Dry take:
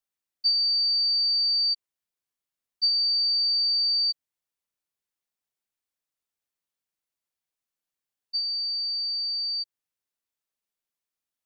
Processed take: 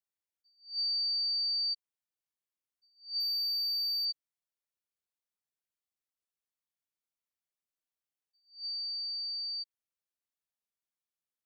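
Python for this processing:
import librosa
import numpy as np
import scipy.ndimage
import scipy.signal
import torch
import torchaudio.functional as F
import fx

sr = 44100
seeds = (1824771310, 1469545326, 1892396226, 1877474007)

y = fx.power_curve(x, sr, exponent=1.4, at=(3.2, 4.05))
y = fx.attack_slew(y, sr, db_per_s=180.0)
y = y * librosa.db_to_amplitude(-8.0)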